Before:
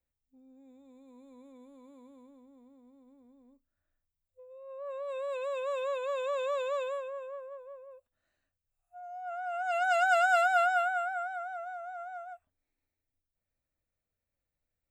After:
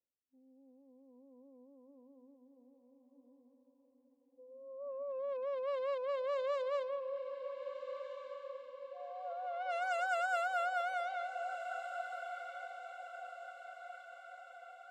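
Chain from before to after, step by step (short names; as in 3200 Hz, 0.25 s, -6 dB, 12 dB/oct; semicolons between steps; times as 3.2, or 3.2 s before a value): Wiener smoothing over 25 samples; Bessel high-pass 370 Hz, order 2; low-pass opened by the level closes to 600 Hz, open at -27.5 dBFS; vocal rider within 4 dB 0.5 s; diffused feedback echo 1.559 s, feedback 51%, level -9 dB; gain -4.5 dB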